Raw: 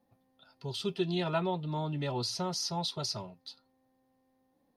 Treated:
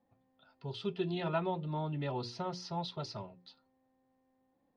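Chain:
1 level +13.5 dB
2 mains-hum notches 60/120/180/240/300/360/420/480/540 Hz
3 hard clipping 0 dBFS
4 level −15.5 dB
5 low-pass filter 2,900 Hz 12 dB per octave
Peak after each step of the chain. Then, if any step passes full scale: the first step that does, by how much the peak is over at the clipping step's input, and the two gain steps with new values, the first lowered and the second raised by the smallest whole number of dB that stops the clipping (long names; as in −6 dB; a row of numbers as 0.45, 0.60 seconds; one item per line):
−5.0, −5.0, −5.0, −20.5, −20.5 dBFS
no step passes full scale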